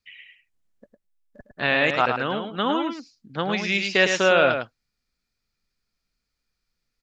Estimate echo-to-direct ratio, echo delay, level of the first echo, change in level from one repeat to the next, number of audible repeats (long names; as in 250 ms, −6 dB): −6.5 dB, 106 ms, −6.5 dB, repeats not evenly spaced, 1